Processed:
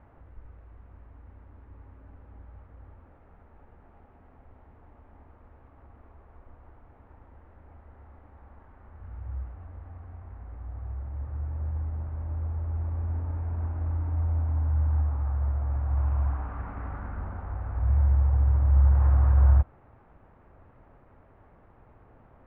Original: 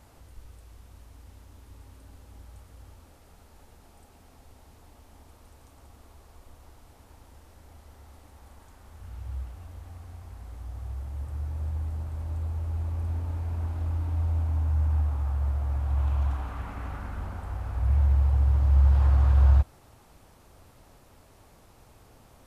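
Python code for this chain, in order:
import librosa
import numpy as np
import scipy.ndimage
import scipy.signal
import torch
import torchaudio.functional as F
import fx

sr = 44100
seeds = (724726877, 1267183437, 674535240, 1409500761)

y = fx.dead_time(x, sr, dead_ms=0.11)
y = scipy.signal.sosfilt(scipy.signal.butter(4, 1900.0, 'lowpass', fs=sr, output='sos'), y)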